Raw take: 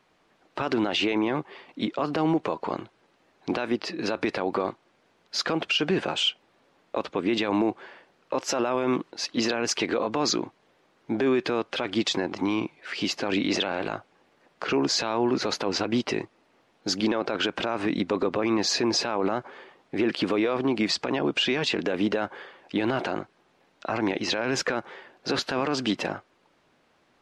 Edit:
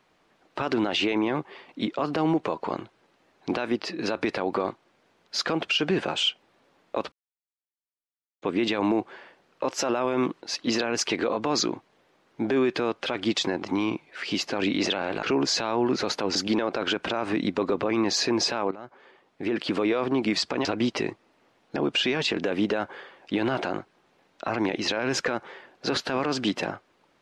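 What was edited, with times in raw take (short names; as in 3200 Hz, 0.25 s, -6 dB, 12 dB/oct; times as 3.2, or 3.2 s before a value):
7.12 insert silence 1.30 s
13.93–14.65 cut
15.77–16.88 move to 21.18
19.24–20.4 fade in, from -17.5 dB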